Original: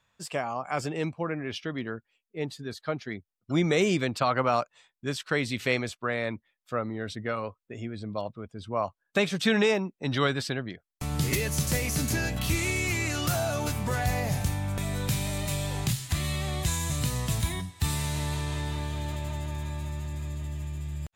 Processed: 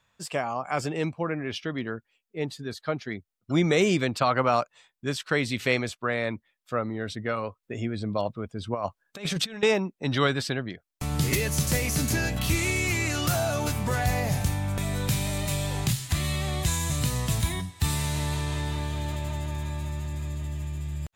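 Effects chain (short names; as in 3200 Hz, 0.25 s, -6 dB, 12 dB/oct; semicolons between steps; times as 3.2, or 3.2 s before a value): 7.63–9.63 negative-ratio compressor -30 dBFS, ratio -0.5; gain +2 dB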